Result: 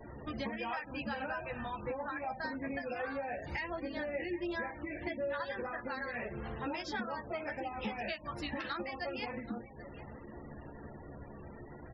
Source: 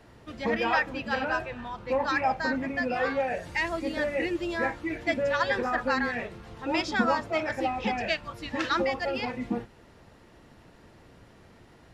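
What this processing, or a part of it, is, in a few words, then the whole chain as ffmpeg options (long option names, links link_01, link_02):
serial compression, peaks first: -filter_complex "[0:a]acompressor=threshold=-37dB:ratio=5,acompressor=threshold=-45dB:ratio=2,asplit=2[link_01][link_02];[link_02]adelay=14,volume=-4.5dB[link_03];[link_01][link_03]amix=inputs=2:normalize=0,asettb=1/sr,asplit=3[link_04][link_05][link_06];[link_04]atrim=end=1.774[link_07];[link_05]atrim=start=1.77:end=2.28,asetpts=PTS-STARTPTS,afade=type=in:duration=0.004:curve=qsin,afade=type=out:start_time=0.506:duration=0.004:curve=qsin,equalizer=frequency=5700:width_type=o:width=1.6:gain=-13.5[link_08];[link_06]atrim=start=2.276[link_09];[link_07][link_08]acrossfade=duration=0.004:curve1=hsin:curve2=qsin[link_10];[link_10][link_09]acrossfade=duration=0.004:curve1=qsin:curve2=hsin,aecho=1:1:781|1562|2343:0.158|0.046|0.0133,afftfilt=real='re*gte(hypot(re,im),0.00282)':imag='im*gte(hypot(re,im),0.00282)':win_size=1024:overlap=0.75,volume=4.5dB"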